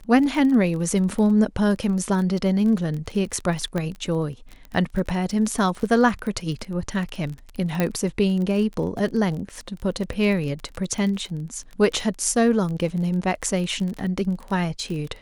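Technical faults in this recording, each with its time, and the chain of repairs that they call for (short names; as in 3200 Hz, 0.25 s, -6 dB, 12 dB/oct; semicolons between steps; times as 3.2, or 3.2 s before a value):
crackle 28/s -29 dBFS
3.78 pop -14 dBFS
7.8 pop -9 dBFS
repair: de-click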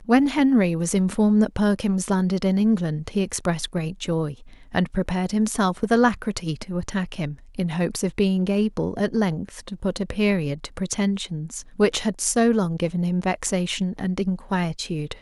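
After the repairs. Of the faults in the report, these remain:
3.78 pop
7.8 pop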